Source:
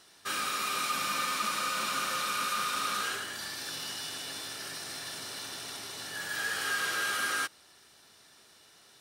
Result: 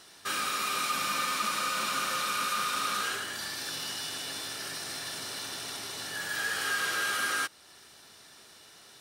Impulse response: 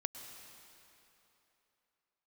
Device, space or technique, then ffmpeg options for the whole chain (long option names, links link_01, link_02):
parallel compression: -filter_complex "[0:a]asplit=2[link_01][link_02];[link_02]acompressor=threshold=-45dB:ratio=6,volume=-2.5dB[link_03];[link_01][link_03]amix=inputs=2:normalize=0"